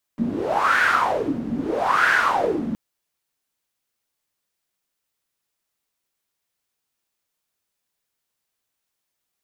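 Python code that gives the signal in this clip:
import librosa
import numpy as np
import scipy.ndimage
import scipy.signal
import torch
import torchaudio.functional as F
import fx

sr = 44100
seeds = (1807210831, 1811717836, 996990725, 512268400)

y = fx.wind(sr, seeds[0], length_s=2.57, low_hz=220.0, high_hz=1600.0, q=6.8, gusts=2, swing_db=8.5)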